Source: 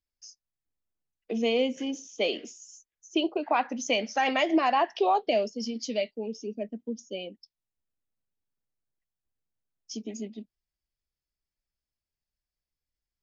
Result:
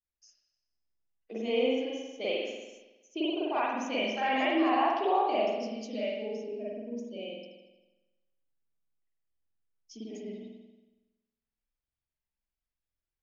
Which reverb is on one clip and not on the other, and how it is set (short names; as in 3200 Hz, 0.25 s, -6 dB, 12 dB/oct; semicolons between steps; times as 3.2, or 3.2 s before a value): spring tank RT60 1.1 s, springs 46 ms, chirp 70 ms, DRR -9 dB; gain -12 dB